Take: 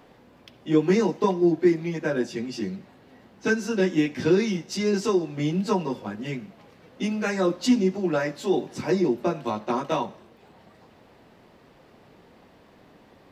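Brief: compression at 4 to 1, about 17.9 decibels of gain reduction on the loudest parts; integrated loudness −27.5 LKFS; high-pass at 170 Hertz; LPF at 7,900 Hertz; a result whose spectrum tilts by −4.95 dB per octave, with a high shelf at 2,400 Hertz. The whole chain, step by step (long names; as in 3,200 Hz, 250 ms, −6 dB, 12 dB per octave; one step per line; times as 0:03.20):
high-pass filter 170 Hz
low-pass filter 7,900 Hz
high-shelf EQ 2,400 Hz −4 dB
downward compressor 4 to 1, threshold −38 dBFS
level +12.5 dB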